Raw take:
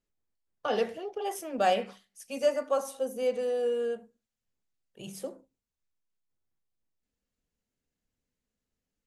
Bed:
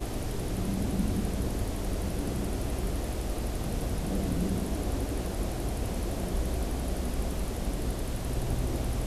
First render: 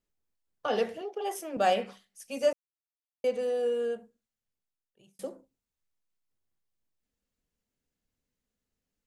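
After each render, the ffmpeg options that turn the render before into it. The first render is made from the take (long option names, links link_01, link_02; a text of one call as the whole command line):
ffmpeg -i in.wav -filter_complex "[0:a]asettb=1/sr,asplit=3[link_01][link_02][link_03];[link_01]atrim=end=1.014[link_04];[link_02]atrim=start=1.01:end=1.57,asetpts=PTS-STARTPTS,afade=type=in:duration=0.004:curve=qsin,afade=type=out:start_time=0.556:duration=0.004:curve=qsin,highpass=frequency=200:width=0.5412,highpass=frequency=200:width=1.3066[link_05];[link_03]atrim=start=1.566[link_06];[link_04][link_05]acrossfade=duration=0.004:curve1=hsin:curve2=qsin[link_07];[link_07][link_06]acrossfade=duration=0.004:curve1=qsin:curve2=hsin,asplit=4[link_08][link_09][link_10][link_11];[link_08]atrim=end=2.53,asetpts=PTS-STARTPTS,afade=type=out:start_time=2.526:duration=0.004:curve=hsin[link_12];[link_09]atrim=start=2.53:end=3.24,asetpts=PTS-STARTPTS,volume=0[link_13];[link_10]atrim=start=3.24:end=5.19,asetpts=PTS-STARTPTS,afade=type=in:duration=0.004:curve=hsin,afade=type=out:start_time=0.73:duration=1.22[link_14];[link_11]atrim=start=5.19,asetpts=PTS-STARTPTS,afade=type=in:duration=0.004:curve=hsin[link_15];[link_12][link_13][link_14][link_15]concat=n=4:v=0:a=1" out.wav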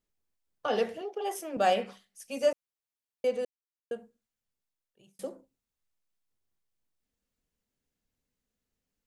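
ffmpeg -i in.wav -filter_complex "[0:a]asplit=3[link_01][link_02][link_03];[link_01]atrim=end=3.45,asetpts=PTS-STARTPTS,afade=type=out:start_time=3.446:duration=0.004:curve=hsin[link_04];[link_02]atrim=start=3.45:end=3.91,asetpts=PTS-STARTPTS,volume=0[link_05];[link_03]atrim=start=3.91,asetpts=PTS-STARTPTS,afade=type=in:duration=0.004:curve=hsin[link_06];[link_04][link_05][link_06]concat=n=3:v=0:a=1" out.wav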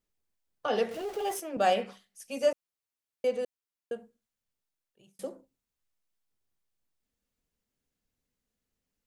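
ffmpeg -i in.wav -filter_complex "[0:a]asettb=1/sr,asplit=3[link_01][link_02][link_03];[link_01]atrim=end=0.914[link_04];[link_02]atrim=start=0.91:end=1.4,asetpts=PTS-STARTPTS,afade=type=in:duration=0.004:curve=qsin,afade=type=out:start_time=0.486:duration=0.004:curve=qsin,aeval=exprs='val(0)+0.5*0.01*sgn(val(0))':channel_layout=same[link_05];[link_03]atrim=start=1.396[link_06];[link_04][link_05]acrossfade=duration=0.004:curve1=hsin:curve2=qsin[link_07];[link_07][link_06]acrossfade=duration=0.004:curve1=qsin:curve2=hsin" out.wav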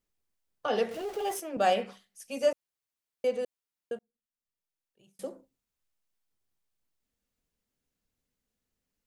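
ffmpeg -i in.wav -filter_complex "[0:a]asplit=2[link_01][link_02];[link_01]atrim=end=3.99,asetpts=PTS-STARTPTS,afade=type=out:start_time=3.986:duration=0.004:curve=hsin[link_03];[link_02]atrim=start=3.99,asetpts=PTS-STARTPTS,afade=type=in:duration=1.31[link_04];[link_03][link_04]concat=n=2:v=0:a=1" out.wav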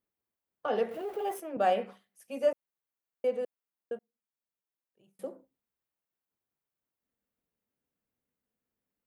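ffmpeg -i in.wav -af "highpass=frequency=180:poles=1,equalizer=frequency=5900:width=0.57:gain=-14" out.wav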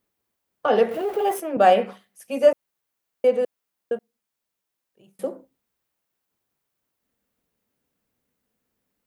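ffmpeg -i in.wav -af "volume=11dB" out.wav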